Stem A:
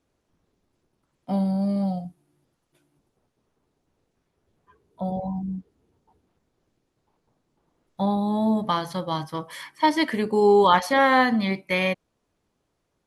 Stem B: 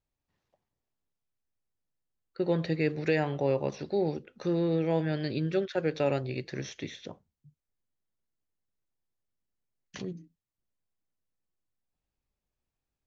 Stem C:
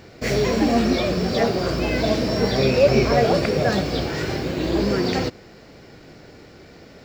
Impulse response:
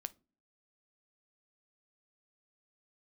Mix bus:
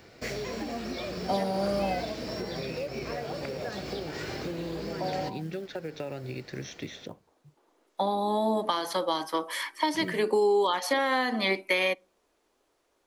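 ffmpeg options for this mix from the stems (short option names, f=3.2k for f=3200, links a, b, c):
-filter_complex "[0:a]highpass=f=310:w=0.5412,highpass=f=310:w=1.3066,acompressor=threshold=-25dB:ratio=2.5,volume=3dB,asplit=2[a][b];[b]volume=-7dB[c];[1:a]alimiter=limit=-23dB:level=0:latency=1:release=216,volume=1dB,asplit=2[d][e];[2:a]lowshelf=f=410:g=-6,volume=-5.5dB[f];[e]apad=whole_len=576290[g];[a][g]sidechaincompress=threshold=-47dB:ratio=3:attack=44:release=103[h];[d][f]amix=inputs=2:normalize=0,acrusher=bits=7:mode=log:mix=0:aa=0.000001,acompressor=threshold=-31dB:ratio=16,volume=0dB[i];[3:a]atrim=start_sample=2205[j];[c][j]afir=irnorm=-1:irlink=0[k];[h][i][k]amix=inputs=3:normalize=0,acrossover=split=330|3000[l][m][n];[m]acompressor=threshold=-25dB:ratio=6[o];[l][o][n]amix=inputs=3:normalize=0"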